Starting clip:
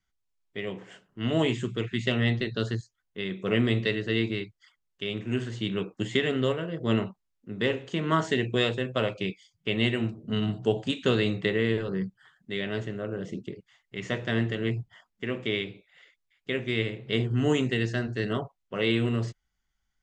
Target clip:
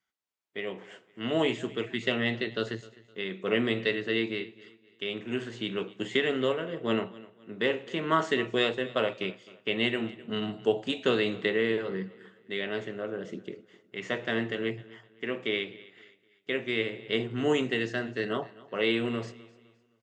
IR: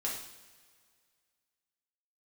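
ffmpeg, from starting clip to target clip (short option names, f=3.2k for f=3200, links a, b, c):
-filter_complex "[0:a]highpass=140,bass=f=250:g=-8,treble=f=4k:g=-5,aecho=1:1:257|514|771:0.0944|0.033|0.0116,asplit=2[a][b];[1:a]atrim=start_sample=2205[c];[b][c]afir=irnorm=-1:irlink=0,volume=-20.5dB[d];[a][d]amix=inputs=2:normalize=0"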